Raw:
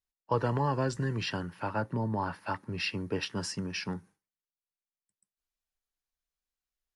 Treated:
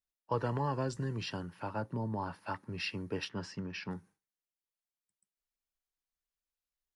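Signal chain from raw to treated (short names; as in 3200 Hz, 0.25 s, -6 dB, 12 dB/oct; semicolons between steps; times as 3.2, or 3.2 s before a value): 0.82–2.48 dynamic EQ 1800 Hz, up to -5 dB, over -49 dBFS, Q 1.5; 3.29–3.91 LPF 3800 Hz 12 dB/oct; gain -4.5 dB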